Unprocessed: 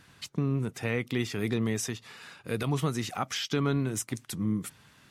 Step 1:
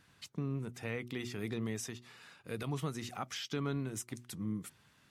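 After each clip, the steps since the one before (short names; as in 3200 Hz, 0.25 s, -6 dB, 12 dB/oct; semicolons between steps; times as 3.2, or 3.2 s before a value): de-hum 121.2 Hz, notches 3; gain -8.5 dB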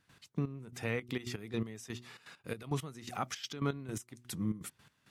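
step gate ".x..x...xxx.x" 166 bpm -12 dB; gain +4 dB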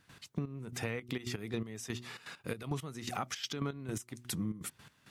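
compressor 4:1, threshold -40 dBFS, peak gain reduction 11 dB; gain +6 dB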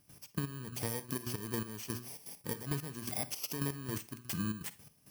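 FFT order left unsorted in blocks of 32 samples; Schroeder reverb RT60 0.3 s, DRR 15 dB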